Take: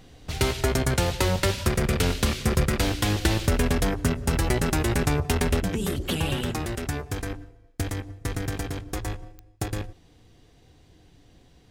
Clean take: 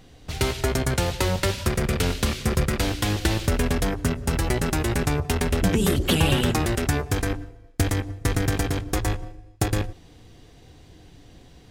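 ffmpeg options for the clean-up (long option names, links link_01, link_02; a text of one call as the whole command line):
ffmpeg -i in.wav -af "adeclick=threshold=4,asetnsamples=nb_out_samples=441:pad=0,asendcmd='5.6 volume volume 6.5dB',volume=0dB" out.wav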